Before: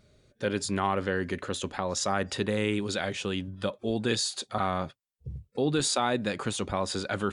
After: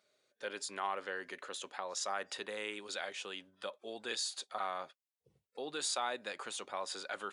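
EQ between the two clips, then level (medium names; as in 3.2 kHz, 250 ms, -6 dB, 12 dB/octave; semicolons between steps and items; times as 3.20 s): high-pass 600 Hz 12 dB/octave; -7.5 dB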